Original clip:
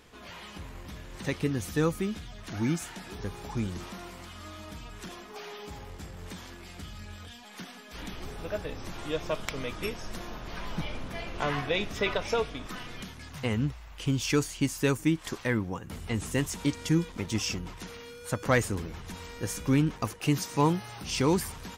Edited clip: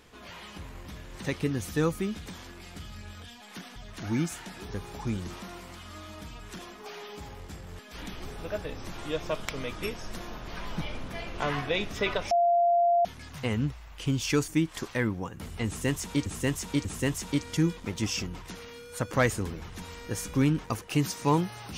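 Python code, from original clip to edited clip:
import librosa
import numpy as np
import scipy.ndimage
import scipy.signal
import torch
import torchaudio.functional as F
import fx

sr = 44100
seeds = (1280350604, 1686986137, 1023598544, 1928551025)

y = fx.edit(x, sr, fx.move(start_s=6.29, length_s=1.5, to_s=2.26),
    fx.bleep(start_s=12.31, length_s=0.74, hz=692.0, db=-19.5),
    fx.cut(start_s=14.48, length_s=0.5),
    fx.repeat(start_s=16.17, length_s=0.59, count=3), tone=tone)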